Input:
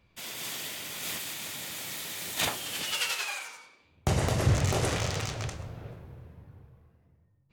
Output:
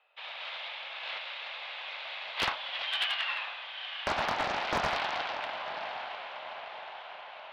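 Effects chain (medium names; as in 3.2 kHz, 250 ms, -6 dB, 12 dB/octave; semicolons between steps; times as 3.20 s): mistuned SSB +250 Hz 330–3300 Hz; echo that smears into a reverb 938 ms, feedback 58%, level -8 dB; overload inside the chain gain 24 dB; loudspeaker Doppler distortion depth 0.92 ms; trim +2 dB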